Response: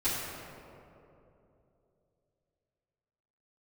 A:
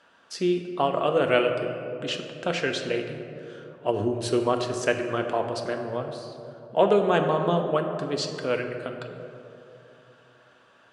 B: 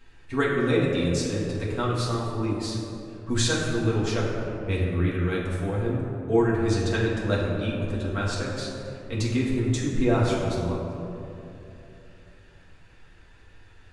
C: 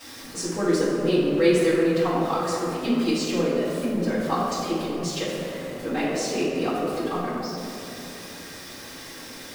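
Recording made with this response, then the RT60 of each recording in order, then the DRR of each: C; 3.0 s, 3.0 s, 2.9 s; 3.5 dB, -6.5 dB, -14.5 dB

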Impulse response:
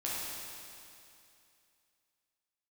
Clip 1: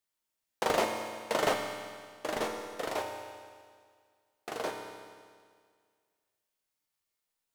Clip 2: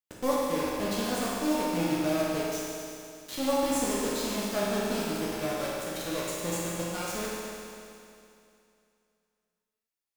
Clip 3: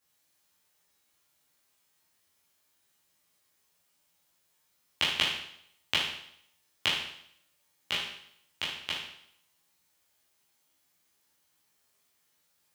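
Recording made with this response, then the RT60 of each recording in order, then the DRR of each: 2; 1.9 s, 2.6 s, 0.70 s; 2.0 dB, -7.5 dB, -8.0 dB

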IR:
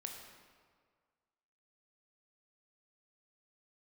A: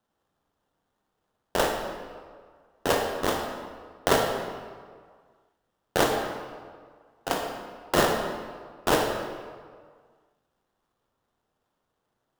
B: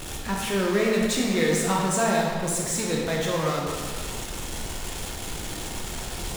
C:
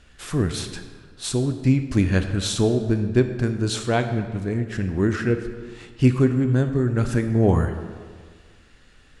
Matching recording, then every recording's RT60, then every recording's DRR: A; 1.8 s, 1.8 s, 1.8 s; 1.5 dB, -2.5 dB, 7.5 dB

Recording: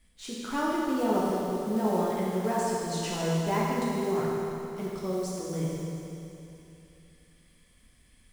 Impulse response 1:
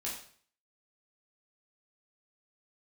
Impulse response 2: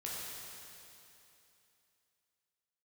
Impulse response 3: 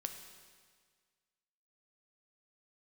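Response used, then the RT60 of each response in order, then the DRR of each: 2; 0.50 s, 2.9 s, 1.7 s; -5.5 dB, -6.0 dB, 5.5 dB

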